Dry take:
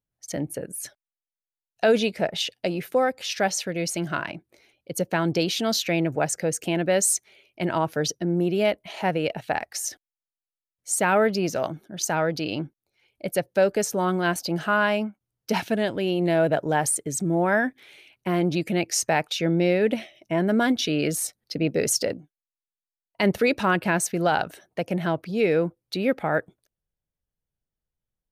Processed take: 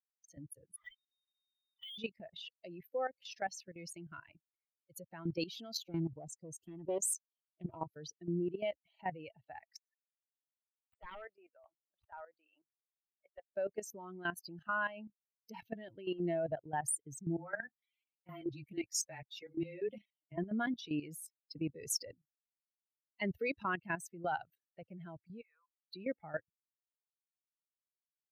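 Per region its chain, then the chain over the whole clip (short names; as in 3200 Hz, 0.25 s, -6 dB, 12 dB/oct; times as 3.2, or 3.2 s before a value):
0.76–1.98 inverted band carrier 3700 Hz + compressor 12:1, threshold -32 dBFS + power-law curve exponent 0.5
5.83–7.86 band shelf 1900 Hz -11.5 dB 1.1 oct + Doppler distortion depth 0.46 ms
9.77–13.45 HPF 670 Hz + wrapped overs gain 15.5 dB + air absorption 500 m
17.37–20.37 high shelf 3000 Hz +6 dB + frequency shift -16 Hz + ensemble effect
25.41–25.82 ladder high-pass 980 Hz, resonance 70% + air absorption 58 m
whole clip: per-bin expansion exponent 2; level quantiser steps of 14 dB; gain -6 dB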